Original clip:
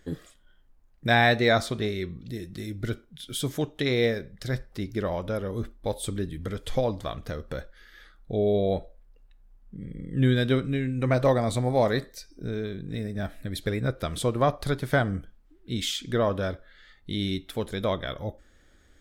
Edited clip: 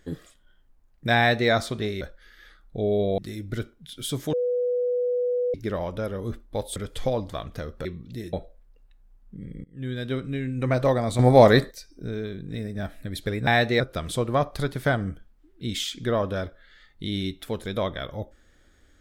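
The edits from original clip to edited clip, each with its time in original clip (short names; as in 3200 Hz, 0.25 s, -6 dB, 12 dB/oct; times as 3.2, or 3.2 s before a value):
1.17–1.5 copy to 13.87
2.01–2.49 swap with 7.56–8.73
3.64–4.85 bleep 492 Hz -21.5 dBFS
6.07–6.47 cut
10.04–10.98 fade in linear, from -23 dB
11.59–12.11 gain +9 dB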